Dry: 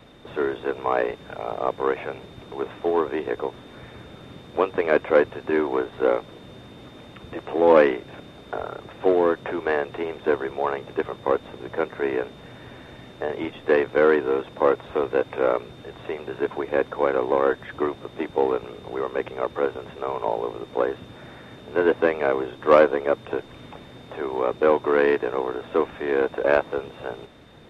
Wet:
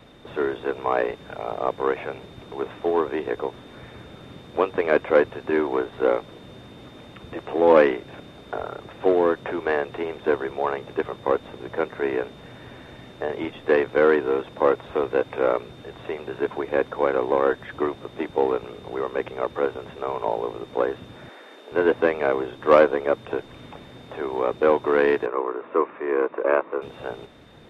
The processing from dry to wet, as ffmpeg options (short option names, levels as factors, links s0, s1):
-filter_complex "[0:a]asettb=1/sr,asplit=3[s0][s1][s2];[s0]atrim=end=21.294[s3];[s1]atrim=start=21.29:end=21.72,asetpts=PTS-STARTPTS,afade=t=in:d=0.004:c=qsin,afade=t=out:st=0.426:d=0.004:c=qsin,highpass=f=330:w=0.5412,highpass=f=330:w=1.3066[s4];[s2]atrim=start=21.716[s5];[s3][s4]acrossfade=d=0.004:c1=hsin:c2=qsin[s6];[s6][s5]acrossfade=d=0.004:c1=qsin:c2=hsin,asettb=1/sr,asplit=3[s7][s8][s9];[s7]atrim=end=25.264[s10];[s8]atrim=start=25.26:end=26.82,asetpts=PTS-STARTPTS,afade=t=in:d=0.004:c=qsin,afade=t=out:st=1.556:d=0.004:c=qsin,highpass=330,equalizer=f=350:t=q:w=4:g=4,equalizer=f=750:t=q:w=4:g=-6,equalizer=f=1100:t=q:w=4:g=7,equalizer=f=1600:t=q:w=4:g=-4,lowpass=f=2300:w=0.5412,lowpass=f=2300:w=1.3066[s11];[s9]atrim=start=26.816[s12];[s10][s11]acrossfade=d=0.004:c1=hsin:c2=qsin[s13];[s13][s12]acrossfade=d=0.004:c1=qsin:c2=hsin"